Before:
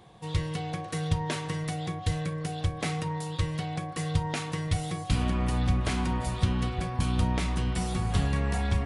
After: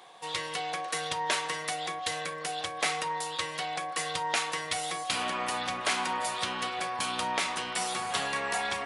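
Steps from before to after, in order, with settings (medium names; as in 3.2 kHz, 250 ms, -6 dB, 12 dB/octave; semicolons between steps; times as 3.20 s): high-pass 690 Hz 12 dB/octave; trim +6.5 dB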